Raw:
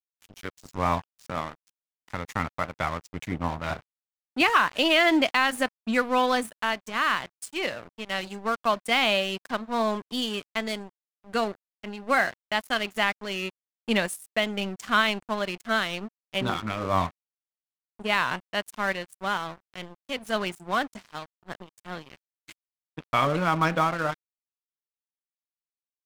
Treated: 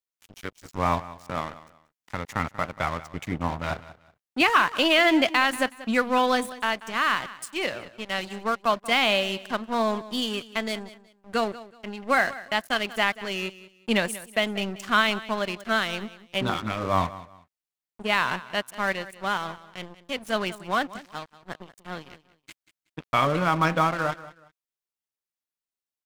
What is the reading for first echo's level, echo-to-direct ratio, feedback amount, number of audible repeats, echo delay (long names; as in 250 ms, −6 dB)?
−17.0 dB, −16.5 dB, 26%, 2, 186 ms